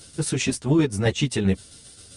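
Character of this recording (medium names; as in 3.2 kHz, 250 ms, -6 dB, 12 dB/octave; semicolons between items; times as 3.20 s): tremolo saw down 7.6 Hz, depth 55%; a shimmering, thickened sound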